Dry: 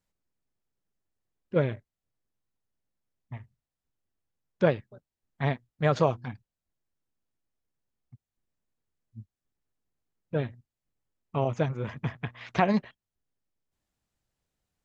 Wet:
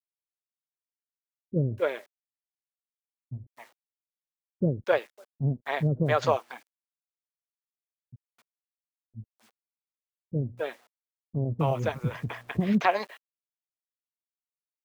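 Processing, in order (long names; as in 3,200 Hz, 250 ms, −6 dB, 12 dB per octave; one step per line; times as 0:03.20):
bit-depth reduction 10 bits, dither none
multiband delay without the direct sound lows, highs 260 ms, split 410 Hz
level +2.5 dB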